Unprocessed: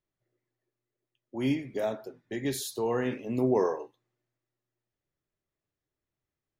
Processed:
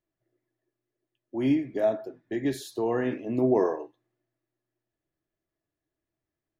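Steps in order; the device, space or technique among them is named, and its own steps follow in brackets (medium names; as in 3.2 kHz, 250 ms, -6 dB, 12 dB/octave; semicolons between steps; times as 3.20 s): inside a helmet (treble shelf 4.6 kHz -9.5 dB; small resonant body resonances 320/660/1700 Hz, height 9 dB)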